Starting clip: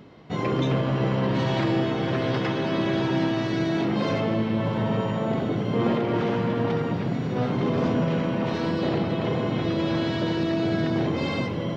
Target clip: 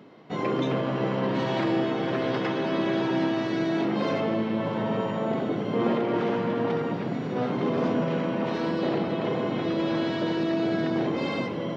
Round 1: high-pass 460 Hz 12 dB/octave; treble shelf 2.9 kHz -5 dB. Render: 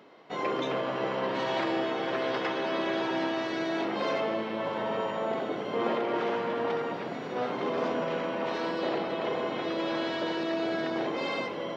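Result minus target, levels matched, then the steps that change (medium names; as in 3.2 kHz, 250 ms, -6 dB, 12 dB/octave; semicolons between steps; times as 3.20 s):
250 Hz band -4.0 dB
change: high-pass 200 Hz 12 dB/octave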